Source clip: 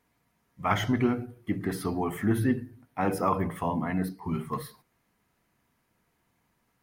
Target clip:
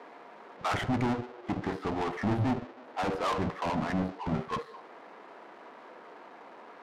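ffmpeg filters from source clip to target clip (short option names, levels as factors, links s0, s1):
-filter_complex "[0:a]aeval=exprs='val(0)+0.5*0.015*sgn(val(0))':c=same,equalizer=f=4200:w=1.5:g=3,asoftclip=type=tanh:threshold=0.0422,adynamicsmooth=sensitivity=4:basefreq=630,acrossover=split=350|1800[s0][s1][s2];[s0]acrusher=bits=4:mix=0:aa=0.5[s3];[s3][s1][s2]amix=inputs=3:normalize=0,volume=1.41"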